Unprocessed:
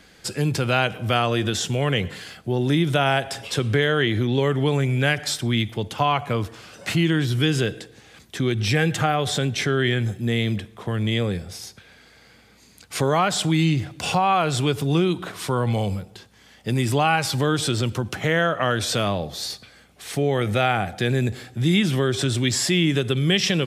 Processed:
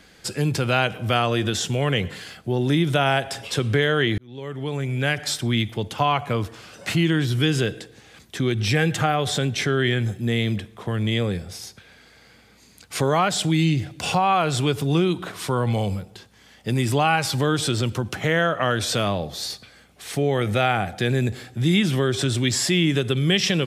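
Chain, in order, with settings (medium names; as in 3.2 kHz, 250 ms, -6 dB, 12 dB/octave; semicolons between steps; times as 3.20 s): 4.18–5.32 s: fade in; 13.29–13.99 s: peaking EQ 1.1 kHz -6 dB 0.82 oct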